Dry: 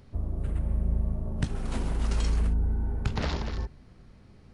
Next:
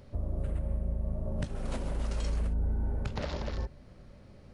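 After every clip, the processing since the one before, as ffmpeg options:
ffmpeg -i in.wav -af "equalizer=frequency=570:width_type=o:width=0.25:gain=12,alimiter=limit=-23dB:level=0:latency=1:release=405" out.wav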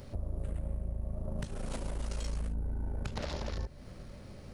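ffmpeg -i in.wav -af "highshelf=frequency=5500:gain=9,acompressor=threshold=-41dB:ratio=2.5,aeval=exprs='(tanh(50.1*val(0)+0.5)-tanh(0.5))/50.1':channel_layout=same,volume=7dB" out.wav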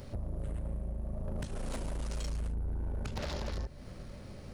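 ffmpeg -i in.wav -af "asoftclip=type=hard:threshold=-32.5dB,volume=1.5dB" out.wav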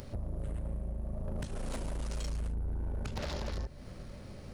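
ffmpeg -i in.wav -af "acompressor=mode=upward:threshold=-46dB:ratio=2.5" out.wav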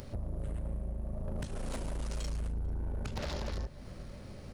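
ffmpeg -i in.wav -filter_complex "[0:a]asplit=2[link_01][link_02];[link_02]adelay=443.1,volume=-24dB,highshelf=frequency=4000:gain=-9.97[link_03];[link_01][link_03]amix=inputs=2:normalize=0" out.wav

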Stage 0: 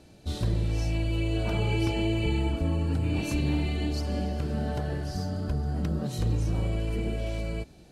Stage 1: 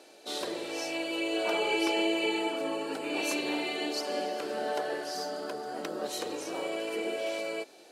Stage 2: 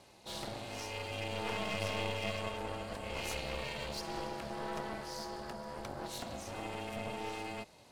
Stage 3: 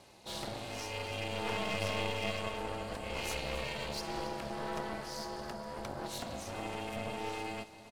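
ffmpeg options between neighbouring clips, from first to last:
ffmpeg -i in.wav -af "highpass=frequency=380:width=0.5412,highpass=frequency=380:width=1.3066,volume=5dB" out.wav
ffmpeg -i in.wav -af "aeval=exprs='val(0)*sin(2*PI*230*n/s)':channel_layout=same,aeval=exprs='clip(val(0),-1,0.0119)':channel_layout=same,volume=-2.5dB" out.wav
ffmpeg -i in.wav -af "aecho=1:1:274:0.178,volume=1.5dB" out.wav

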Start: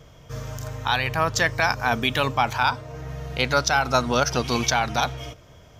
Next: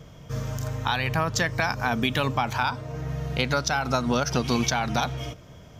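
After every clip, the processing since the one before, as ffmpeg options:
ffmpeg -i in.wav -af "acompressor=threshold=-21dB:ratio=6,equalizer=frequency=190:width=1.1:gain=7" out.wav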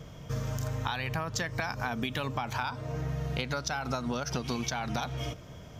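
ffmpeg -i in.wav -af "acompressor=threshold=-29dB:ratio=6" out.wav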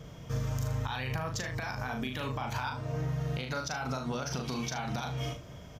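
ffmpeg -i in.wav -filter_complex "[0:a]asplit=2[link_01][link_02];[link_02]aecho=0:1:39|75:0.596|0.224[link_03];[link_01][link_03]amix=inputs=2:normalize=0,alimiter=limit=-21.5dB:level=0:latency=1:release=93,volume=-2dB" out.wav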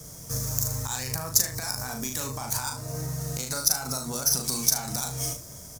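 ffmpeg -i in.wav -filter_complex "[0:a]acrossover=split=110|2500[link_01][link_02][link_03];[link_03]aeval=exprs='max(val(0),0)':channel_layout=same[link_04];[link_01][link_02][link_04]amix=inputs=3:normalize=0,aexciter=amount=14:drive=7.2:freq=4700" out.wav

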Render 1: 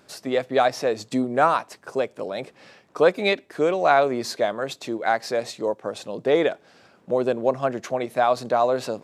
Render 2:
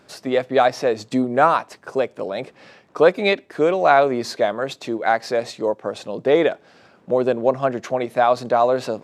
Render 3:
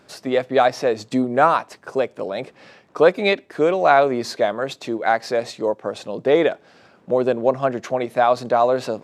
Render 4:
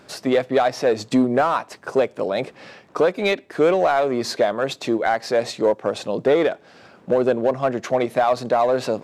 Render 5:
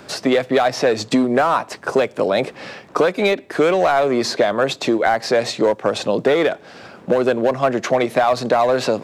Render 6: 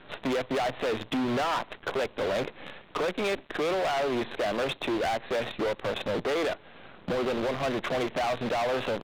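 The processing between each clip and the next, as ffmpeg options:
ffmpeg -i in.wav -af "highshelf=frequency=6200:gain=-7.5,volume=3.5dB" out.wav
ffmpeg -i in.wav -af anull out.wav
ffmpeg -i in.wav -filter_complex "[0:a]asplit=2[link_01][link_02];[link_02]volume=17.5dB,asoftclip=hard,volume=-17.5dB,volume=-4dB[link_03];[link_01][link_03]amix=inputs=2:normalize=0,alimiter=limit=-9dB:level=0:latency=1:release=439" out.wav
ffmpeg -i in.wav -filter_complex "[0:a]acrossover=split=190|1200|8000[link_01][link_02][link_03][link_04];[link_01]acompressor=threshold=-41dB:ratio=4[link_05];[link_02]acompressor=threshold=-23dB:ratio=4[link_06];[link_03]acompressor=threshold=-30dB:ratio=4[link_07];[link_04]acompressor=threshold=-53dB:ratio=4[link_08];[link_05][link_06][link_07][link_08]amix=inputs=4:normalize=0,volume=8dB" out.wav
ffmpeg -i in.wav -af "aresample=8000,acrusher=bits=5:dc=4:mix=0:aa=0.000001,aresample=44100,volume=19.5dB,asoftclip=hard,volume=-19.5dB,volume=-6dB" out.wav

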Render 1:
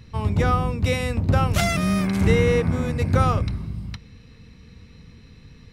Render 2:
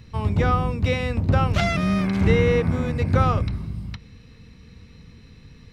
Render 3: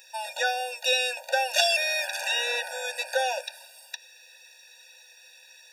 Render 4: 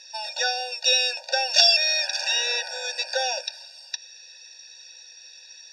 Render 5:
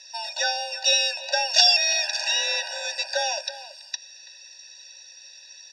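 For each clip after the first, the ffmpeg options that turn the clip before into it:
ffmpeg -i in.wav -filter_complex "[0:a]acrossover=split=5300[link_01][link_02];[link_02]acompressor=threshold=-56dB:ratio=4:attack=1:release=60[link_03];[link_01][link_03]amix=inputs=2:normalize=0" out.wav
ffmpeg -i in.wav -af "crystalizer=i=9.5:c=0,afftfilt=real='re*eq(mod(floor(b*sr/1024/480),2),1)':imag='im*eq(mod(floor(b*sr/1024/480),2),1)':win_size=1024:overlap=0.75,volume=-2.5dB" out.wav
ffmpeg -i in.wav -af "lowpass=frequency=5200:width_type=q:width=6.3,volume=-1.5dB" out.wav
ffmpeg -i in.wav -filter_complex "[0:a]afreqshift=31,asplit=2[link_01][link_02];[link_02]adelay=330,highpass=300,lowpass=3400,asoftclip=type=hard:threshold=-10dB,volume=-14dB[link_03];[link_01][link_03]amix=inputs=2:normalize=0" out.wav

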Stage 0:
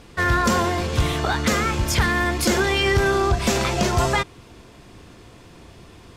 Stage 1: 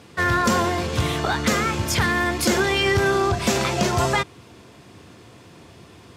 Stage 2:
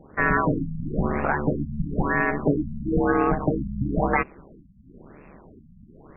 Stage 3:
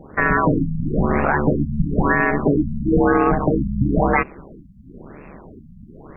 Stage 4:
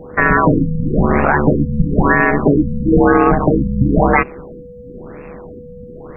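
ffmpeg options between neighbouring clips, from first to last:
ffmpeg -i in.wav -af "highpass=frequency=81:width=0.5412,highpass=frequency=81:width=1.3066" out.wav
ffmpeg -i in.wav -af "aeval=exprs='val(0)*sin(2*PI*72*n/s)':channel_layout=same,afftfilt=real='re*lt(b*sr/1024,220*pow(2800/220,0.5+0.5*sin(2*PI*1*pts/sr)))':imag='im*lt(b*sr/1024,220*pow(2800/220,0.5+0.5*sin(2*PI*1*pts/sr)))':win_size=1024:overlap=0.75,volume=2.5dB" out.wav
ffmpeg -i in.wav -af "alimiter=level_in=13dB:limit=-1dB:release=50:level=0:latency=1,volume=-5.5dB" out.wav
ffmpeg -i in.wav -af "aeval=exprs='val(0)+0.0112*sin(2*PI*490*n/s)':channel_layout=same,volume=5dB" out.wav

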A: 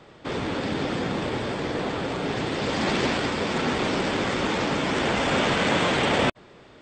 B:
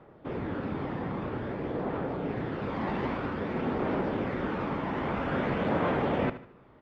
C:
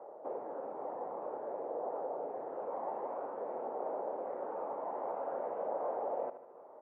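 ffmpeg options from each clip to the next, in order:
ffmpeg -i in.wav -af "lowpass=1500,aphaser=in_gain=1:out_gain=1:delay=1.1:decay=0.27:speed=0.51:type=triangular,aecho=1:1:75|150|225|300:0.211|0.0803|0.0305|0.0116,volume=-6dB" out.wav
ffmpeg -i in.wav -af "acompressor=threshold=-41dB:ratio=4,asuperpass=centerf=660:order=4:qfactor=1.6,volume=9.5dB" out.wav

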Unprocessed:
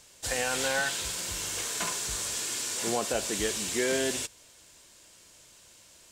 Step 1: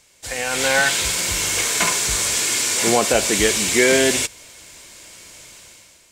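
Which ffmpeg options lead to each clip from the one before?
ffmpeg -i in.wav -af "equalizer=frequency=2200:width=5.5:gain=7.5,dynaudnorm=framelen=130:gausssize=9:maxgain=13dB" out.wav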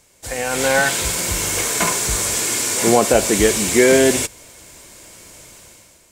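ffmpeg -i in.wav -af "equalizer=frequency=3400:width_type=o:width=2.7:gain=-8.5,volume=5dB" out.wav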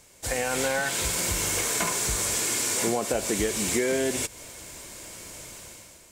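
ffmpeg -i in.wav -af "acompressor=threshold=-24dB:ratio=5" out.wav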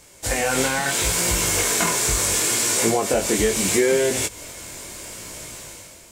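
ffmpeg -i in.wav -af "flanger=delay=17:depth=6.4:speed=0.74,volume=9dB" out.wav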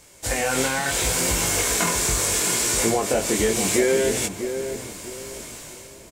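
ffmpeg -i in.wav -filter_complex "[0:a]asplit=2[link_01][link_02];[link_02]adelay=647,lowpass=frequency=890:poles=1,volume=-7dB,asplit=2[link_03][link_04];[link_04]adelay=647,lowpass=frequency=890:poles=1,volume=0.33,asplit=2[link_05][link_06];[link_06]adelay=647,lowpass=frequency=890:poles=1,volume=0.33,asplit=2[link_07][link_08];[link_08]adelay=647,lowpass=frequency=890:poles=1,volume=0.33[link_09];[link_01][link_03][link_05][link_07][link_09]amix=inputs=5:normalize=0,volume=-1.5dB" out.wav

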